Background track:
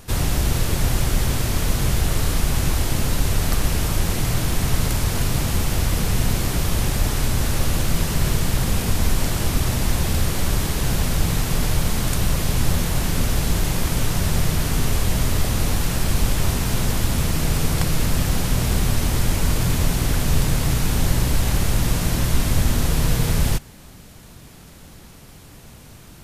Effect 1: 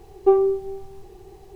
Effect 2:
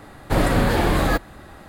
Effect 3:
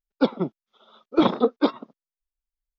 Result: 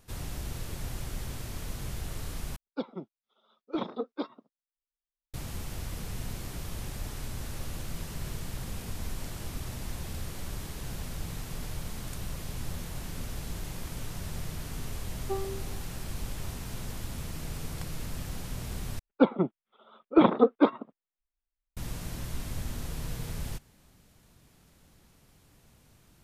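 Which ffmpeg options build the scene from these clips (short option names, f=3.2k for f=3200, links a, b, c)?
-filter_complex "[3:a]asplit=2[a][b];[0:a]volume=-17dB[c];[1:a]equalizer=f=460:t=o:w=0.7:g=-11.5[d];[b]lowpass=f=2.9k:w=0.5412,lowpass=f=2.9k:w=1.3066[e];[c]asplit=3[f][g][h];[f]atrim=end=2.564[i];[a]atrim=end=2.78,asetpts=PTS-STARTPTS,volume=-14dB[j];[g]atrim=start=5.336:end=18.994[k];[e]atrim=end=2.78,asetpts=PTS-STARTPTS,volume=-1dB[l];[h]atrim=start=21.766[m];[d]atrim=end=1.55,asetpts=PTS-STARTPTS,volume=-11.5dB,afade=t=in:d=0.004:c=hsin,afade=t=out:st=1.546:d=0.004:c=hsin,adelay=15030[n];[i][j]acrossfade=d=0.004:c1=hsin:c2=hsin[o];[o][k]acrossfade=d=0.004:c1=hsin:c2=hsin[p];[p][l]acrossfade=d=0.004:c1=hsin:c2=hsin[q];[q][m]acrossfade=d=0.004:c1=hsin:c2=hsin[r];[r][n]amix=inputs=2:normalize=0"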